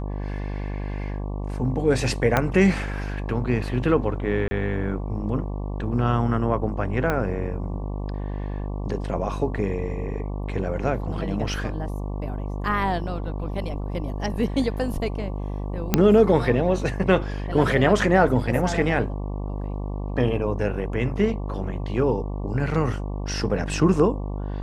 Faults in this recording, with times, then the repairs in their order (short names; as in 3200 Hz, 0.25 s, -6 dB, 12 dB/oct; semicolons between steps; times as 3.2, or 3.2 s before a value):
buzz 50 Hz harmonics 23 -29 dBFS
2.37 pop -6 dBFS
4.48–4.51 gap 30 ms
7.1 pop -11 dBFS
15.94 pop -3 dBFS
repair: de-click; de-hum 50 Hz, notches 23; interpolate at 4.48, 30 ms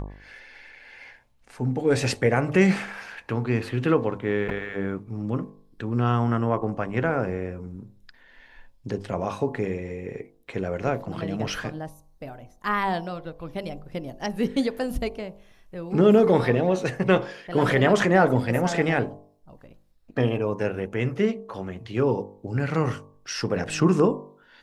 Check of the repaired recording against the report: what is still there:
2.37 pop
7.1 pop